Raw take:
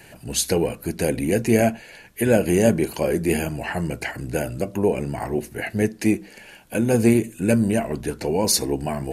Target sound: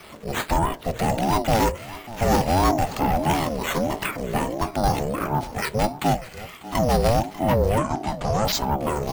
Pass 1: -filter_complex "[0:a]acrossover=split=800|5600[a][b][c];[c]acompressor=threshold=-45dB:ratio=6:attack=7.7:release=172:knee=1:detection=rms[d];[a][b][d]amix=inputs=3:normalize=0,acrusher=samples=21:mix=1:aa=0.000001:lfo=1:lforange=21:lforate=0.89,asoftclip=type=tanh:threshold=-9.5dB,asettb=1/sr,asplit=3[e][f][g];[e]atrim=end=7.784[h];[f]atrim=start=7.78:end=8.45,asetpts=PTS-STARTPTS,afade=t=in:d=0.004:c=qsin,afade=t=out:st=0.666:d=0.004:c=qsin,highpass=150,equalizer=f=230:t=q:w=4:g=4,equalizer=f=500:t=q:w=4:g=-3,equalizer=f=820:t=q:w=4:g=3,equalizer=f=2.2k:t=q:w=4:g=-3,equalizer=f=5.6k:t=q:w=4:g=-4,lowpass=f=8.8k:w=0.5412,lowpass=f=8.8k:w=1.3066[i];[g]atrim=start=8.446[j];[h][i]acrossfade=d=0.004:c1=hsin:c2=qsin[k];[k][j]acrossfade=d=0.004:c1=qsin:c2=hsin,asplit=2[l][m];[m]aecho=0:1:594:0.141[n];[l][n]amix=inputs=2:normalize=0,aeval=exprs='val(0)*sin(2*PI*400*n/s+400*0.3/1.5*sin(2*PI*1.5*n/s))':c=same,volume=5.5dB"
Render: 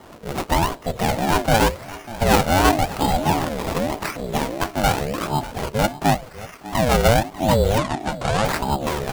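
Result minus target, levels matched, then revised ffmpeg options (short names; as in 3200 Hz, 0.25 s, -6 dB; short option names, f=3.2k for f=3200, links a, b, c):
decimation with a swept rate: distortion +10 dB; soft clip: distortion -9 dB
-filter_complex "[0:a]acrossover=split=800|5600[a][b][c];[c]acompressor=threshold=-45dB:ratio=6:attack=7.7:release=172:knee=1:detection=rms[d];[a][b][d]amix=inputs=3:normalize=0,acrusher=samples=6:mix=1:aa=0.000001:lfo=1:lforange=6:lforate=0.89,asoftclip=type=tanh:threshold=-17dB,asettb=1/sr,asplit=3[e][f][g];[e]atrim=end=7.784[h];[f]atrim=start=7.78:end=8.45,asetpts=PTS-STARTPTS,afade=t=in:d=0.004:c=qsin,afade=t=out:st=0.666:d=0.004:c=qsin,highpass=150,equalizer=f=230:t=q:w=4:g=4,equalizer=f=500:t=q:w=4:g=-3,equalizer=f=820:t=q:w=4:g=3,equalizer=f=2.2k:t=q:w=4:g=-3,equalizer=f=5.6k:t=q:w=4:g=-4,lowpass=f=8.8k:w=0.5412,lowpass=f=8.8k:w=1.3066[i];[g]atrim=start=8.446[j];[h][i]acrossfade=d=0.004:c1=hsin:c2=qsin[k];[k][j]acrossfade=d=0.004:c1=qsin:c2=hsin,asplit=2[l][m];[m]aecho=0:1:594:0.141[n];[l][n]amix=inputs=2:normalize=0,aeval=exprs='val(0)*sin(2*PI*400*n/s+400*0.3/1.5*sin(2*PI*1.5*n/s))':c=same,volume=5.5dB"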